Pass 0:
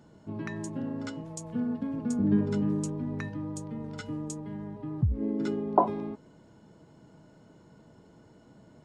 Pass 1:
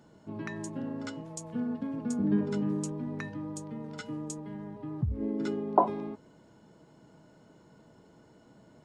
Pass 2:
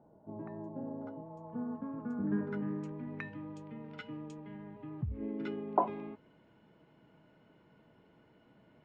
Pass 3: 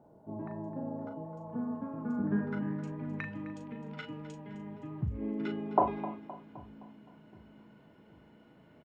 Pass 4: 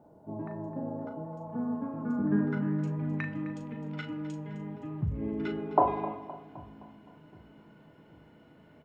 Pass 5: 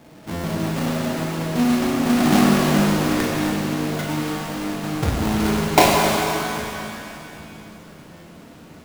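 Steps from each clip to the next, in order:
bass shelf 240 Hz -4.5 dB; hum notches 50/100 Hz
low-pass sweep 750 Hz -> 2.6 kHz, 1.10–3.25 s; trim -6.5 dB
doubling 38 ms -7 dB; two-band feedback delay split 310 Hz, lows 773 ms, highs 259 ms, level -15 dB; trim +2.5 dB
FDN reverb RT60 1.4 s, low-frequency decay 1×, high-frequency decay 0.3×, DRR 10 dB; trim +2 dB
square wave that keeps the level; buffer glitch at 0.31/8.11 s, samples 512, times 10; pitch-shifted reverb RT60 2.5 s, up +7 st, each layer -8 dB, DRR -1 dB; trim +5 dB

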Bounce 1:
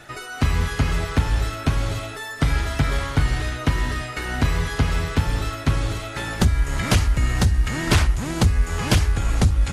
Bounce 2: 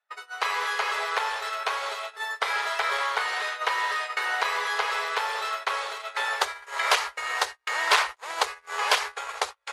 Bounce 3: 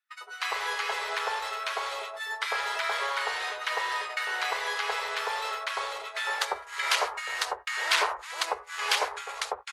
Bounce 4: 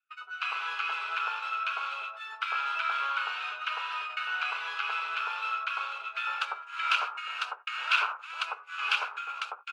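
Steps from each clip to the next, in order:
elliptic high-pass 430 Hz, stop band 40 dB; gate -33 dBFS, range -41 dB; graphic EQ 1/2/4 kHz +10/+5/+6 dB; trim -4.5 dB
bands offset in time highs, lows 100 ms, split 1.2 kHz; trim -1.5 dB
two resonant band-passes 1.9 kHz, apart 0.87 oct; trim +6 dB

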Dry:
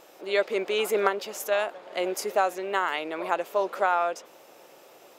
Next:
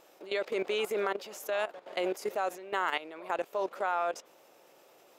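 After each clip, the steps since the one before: level held to a coarse grid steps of 15 dB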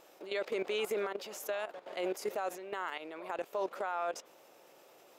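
peak limiter -26 dBFS, peak gain reduction 10.5 dB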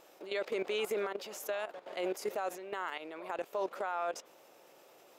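no audible change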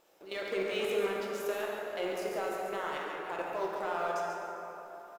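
companding laws mixed up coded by A; delay 140 ms -7 dB; plate-style reverb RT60 3.6 s, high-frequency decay 0.45×, DRR -2 dB

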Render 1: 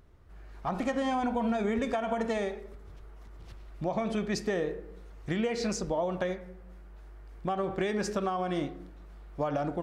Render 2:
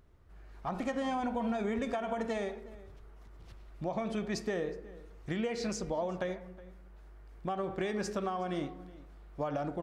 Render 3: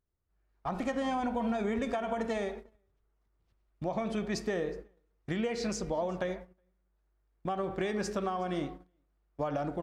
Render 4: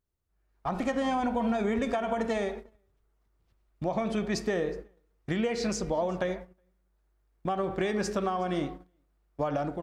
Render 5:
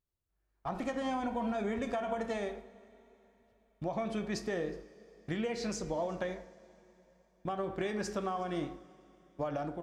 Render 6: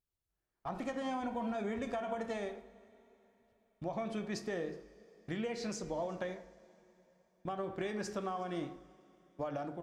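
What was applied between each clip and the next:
echo from a far wall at 63 m, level -19 dB; trim -4 dB
gate -44 dBFS, range -24 dB; trim +1.5 dB
level rider gain up to 3.5 dB
two-slope reverb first 0.35 s, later 3.8 s, from -18 dB, DRR 10.5 dB; trim -6 dB
de-hum 50.19 Hz, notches 3; trim -3 dB

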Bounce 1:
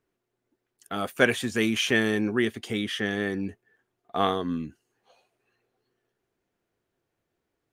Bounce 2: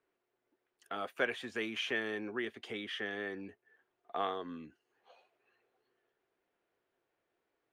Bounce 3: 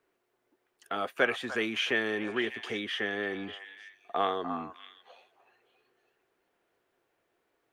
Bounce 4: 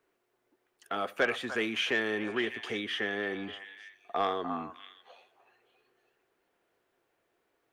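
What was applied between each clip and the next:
compression 1.5:1, threshold -47 dBFS, peak gain reduction 11.5 dB; three-band isolator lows -14 dB, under 330 Hz, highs -15 dB, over 4 kHz
repeats whose band climbs or falls 299 ms, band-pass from 1 kHz, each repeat 1.4 oct, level -6.5 dB; trim +6.5 dB
saturation -16.5 dBFS, distortion -21 dB; on a send at -20 dB: reverberation, pre-delay 64 ms

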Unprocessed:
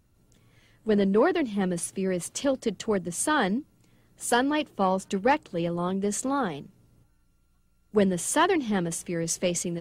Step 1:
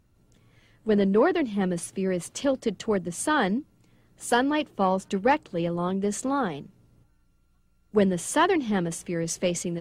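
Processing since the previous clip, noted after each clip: treble shelf 5.9 kHz -6 dB; trim +1 dB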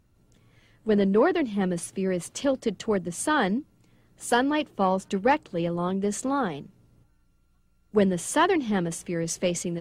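no audible change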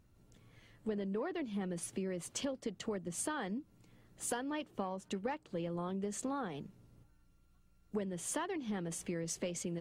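compression 10:1, threshold -32 dBFS, peak gain reduction 16.5 dB; trim -3 dB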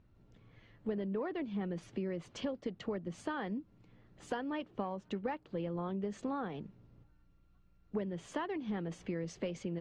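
distance through air 200 m; trim +1.5 dB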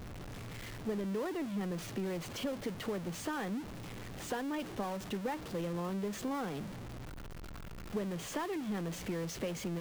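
jump at every zero crossing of -37.5 dBFS; trim -2 dB

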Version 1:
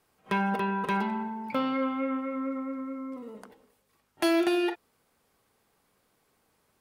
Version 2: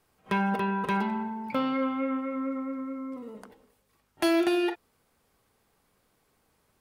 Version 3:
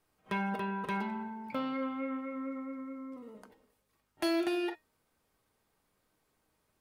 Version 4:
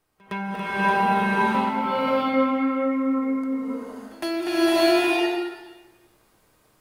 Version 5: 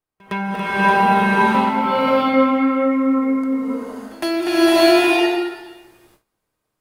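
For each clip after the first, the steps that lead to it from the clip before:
bass shelf 95 Hz +8 dB
feedback comb 310 Hz, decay 0.21 s, harmonics all, mix 60%
pre-echo 113 ms -24 dB; swelling reverb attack 610 ms, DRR -11.5 dB; trim +3 dB
gate with hold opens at -47 dBFS; trim +6 dB

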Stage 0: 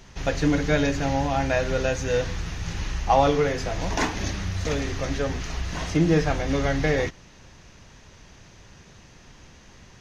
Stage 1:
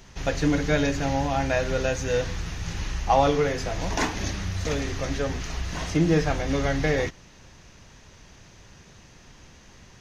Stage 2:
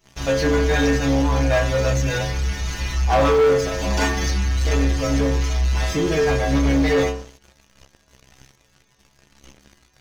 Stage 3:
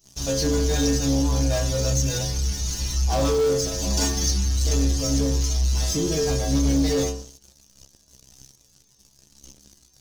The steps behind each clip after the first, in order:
treble shelf 8.6 kHz +4.5 dB; trim -1 dB
inharmonic resonator 65 Hz, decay 0.77 s, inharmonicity 0.008; waveshaping leveller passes 3; trim +7 dB
FFT filter 250 Hz 0 dB, 2.1 kHz -12 dB, 5.5 kHz +9 dB; trim -2 dB

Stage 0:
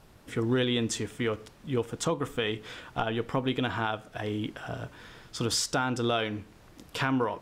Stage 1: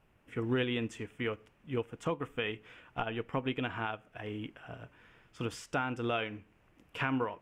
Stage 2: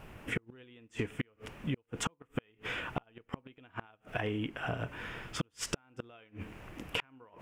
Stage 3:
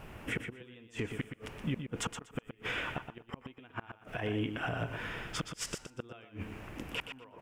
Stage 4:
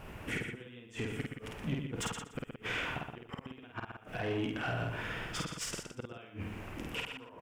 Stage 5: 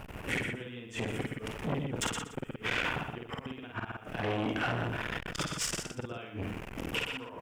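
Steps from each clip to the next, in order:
resonant high shelf 3.3 kHz -6.5 dB, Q 3; upward expansion 1.5:1, over -40 dBFS; trim -4 dB
inverted gate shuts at -27 dBFS, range -40 dB; compression 10:1, threshold -49 dBFS, peak gain reduction 16 dB; trim +17.5 dB
peak limiter -27 dBFS, peak gain reduction 11 dB; feedback delay 121 ms, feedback 18%, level -8 dB; trim +2 dB
saturation -29.5 dBFS, distortion -16 dB; doubling 50 ms -2.5 dB
transformer saturation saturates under 670 Hz; trim +7.5 dB

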